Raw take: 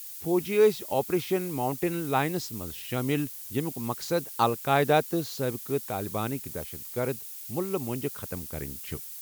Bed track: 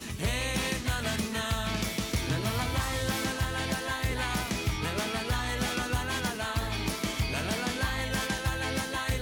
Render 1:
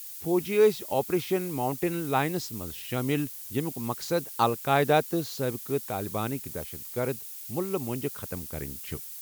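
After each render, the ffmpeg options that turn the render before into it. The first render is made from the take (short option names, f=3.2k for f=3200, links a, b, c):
-af anull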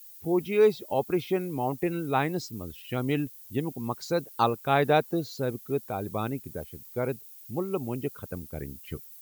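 -af "afftdn=nr=12:nf=-41"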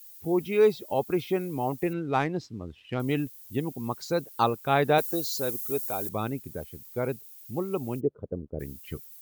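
-filter_complex "[0:a]asettb=1/sr,asplit=3[a][b][c];[a]atrim=end=1.934[d];[b]atrim=start=1.93:end=3,asetpts=PTS-STARTPTS,afade=t=in:d=0.004:c=qsin,afade=t=out:st=1.066:d=0.004:c=qsin,adynamicsmooth=sensitivity=4.5:basefreq=2.9k[e];[c]atrim=start=2.996[f];[d][e]acrossfade=d=0.004:c1=hsin:c2=qsin[g];[g][f]acrossfade=d=0.004:c1=qsin:c2=hsin,asettb=1/sr,asplit=3[h][i][j];[h]atrim=end=4.984[k];[i]atrim=start=4.98:end=6.09,asetpts=PTS-STARTPTS,afade=t=in:d=0.004:c=qsin,afade=t=out:st=1.106:d=0.004:c=qsin,bass=f=250:g=-8,treble=f=4k:g=14[l];[j]atrim=start=6.086[m];[k][l]acrossfade=d=0.004:c1=hsin:c2=qsin[n];[n][m]acrossfade=d=0.004:c1=qsin:c2=hsin,asplit=3[o][p][q];[o]afade=t=out:st=7.99:d=0.02[r];[p]lowpass=f=470:t=q:w=2.1,afade=t=in:st=7.99:d=0.02,afade=t=out:st=8.59:d=0.02[s];[q]afade=t=in:st=8.59:d=0.02[t];[r][s][t]amix=inputs=3:normalize=0"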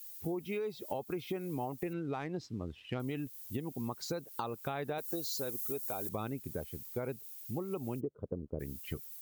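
-af "alimiter=limit=-20dB:level=0:latency=1:release=221,acompressor=threshold=-34dB:ratio=6"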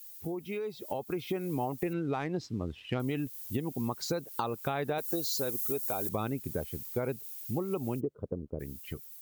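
-af "dynaudnorm=f=100:g=21:m=5dB"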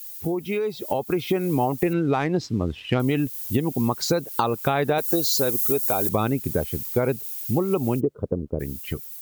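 -af "volume=10.5dB"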